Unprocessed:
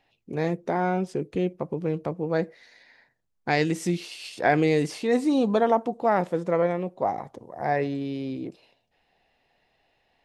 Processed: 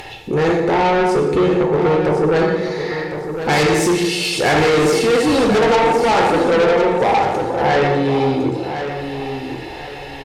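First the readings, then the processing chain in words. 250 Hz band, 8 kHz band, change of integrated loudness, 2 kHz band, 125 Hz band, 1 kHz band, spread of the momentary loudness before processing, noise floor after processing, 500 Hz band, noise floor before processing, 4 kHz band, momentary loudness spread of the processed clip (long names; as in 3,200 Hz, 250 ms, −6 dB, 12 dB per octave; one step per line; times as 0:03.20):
+8.5 dB, +16.0 dB, +10.0 dB, +12.0 dB, +9.0 dB, +11.0 dB, 12 LU, −31 dBFS, +11.5 dB, −73 dBFS, +16.5 dB, 11 LU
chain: in parallel at +1 dB: upward compression, threshold −26 dBFS
on the sum: dense smooth reverb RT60 1.1 s, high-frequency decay 0.8×, DRR 0 dB
downsampling to 32,000 Hz
comb filter 2.3 ms, depth 50%
soft clipping −8 dBFS, distortion −16 dB
harmonic generator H 5 −13 dB, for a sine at −8 dBFS
on a send: repeating echo 1,058 ms, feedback 30%, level −9 dB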